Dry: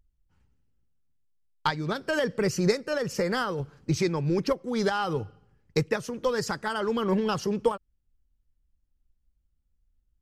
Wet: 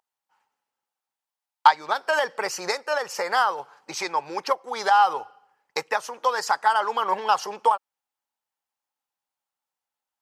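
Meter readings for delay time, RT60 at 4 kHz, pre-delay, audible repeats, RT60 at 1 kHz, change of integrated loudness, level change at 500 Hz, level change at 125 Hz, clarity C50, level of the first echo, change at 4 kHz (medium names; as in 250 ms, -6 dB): no echo, no reverb, no reverb, no echo, no reverb, +4.0 dB, -2.0 dB, under -20 dB, no reverb, no echo, +4.0 dB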